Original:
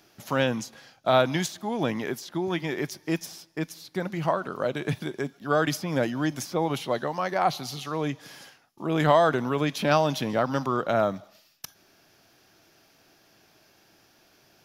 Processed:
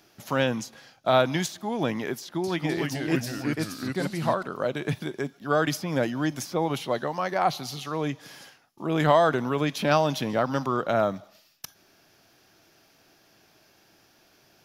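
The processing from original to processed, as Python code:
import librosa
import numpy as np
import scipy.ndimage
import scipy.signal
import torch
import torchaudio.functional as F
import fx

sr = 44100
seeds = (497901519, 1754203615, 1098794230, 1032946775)

y = fx.echo_pitch(x, sr, ms=256, semitones=-2, count=3, db_per_echo=-3.0, at=(2.18, 4.43))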